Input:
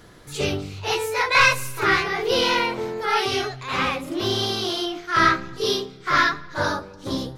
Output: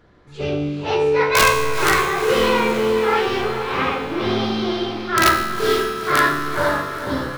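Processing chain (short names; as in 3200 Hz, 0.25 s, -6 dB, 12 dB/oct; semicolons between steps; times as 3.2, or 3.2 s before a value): tracing distortion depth 0.021 ms; tape spacing loss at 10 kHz 27 dB; wrapped overs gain 11.5 dB; low shelf 180 Hz -3 dB; resonator 73 Hz, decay 1.2 s, harmonics all, mix 80%; de-hum 49.31 Hz, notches 26; on a send: diffused feedback echo 0.478 s, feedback 55%, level -8 dB; on the sum: AGC gain up to 7.5 dB; gain +9 dB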